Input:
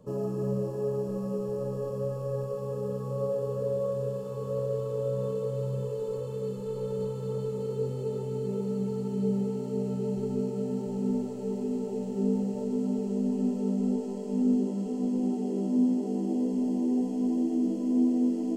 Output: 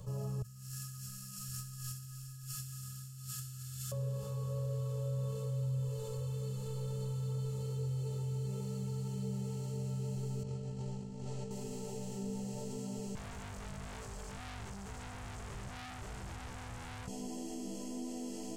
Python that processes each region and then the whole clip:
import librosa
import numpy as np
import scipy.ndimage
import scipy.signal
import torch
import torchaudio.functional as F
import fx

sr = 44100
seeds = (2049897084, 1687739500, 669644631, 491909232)

y = fx.chain(x, sr, fx.brickwall_bandstop(low_hz=200.0, high_hz=1200.0),
    fx.over_compress(threshold_db=-42.0, ratio=-0.5),
    fx.bass_treble(bass_db=-12, treble_db=8), at=(0.42, 3.92))
y = fx.chain(y, sr, fx.over_compress(threshold_db=-35.0, ratio=-1.0),
    fx.air_absorb(metres=72.0), at=(10.43, 11.51))
y = fx.chain(y, sr, fx.peak_eq(hz=90.0, db=-11.5, octaves=1.2),
    fx.tube_stage(drive_db=41.0, bias=0.75), at=(13.15, 17.08))
y = fx.curve_eq(y, sr, hz=(120.0, 250.0, 660.0, 6400.0), db=(0, -27, -15, -1))
y = fx.env_flatten(y, sr, amount_pct=50)
y = y * 10.0 ** (1.0 / 20.0)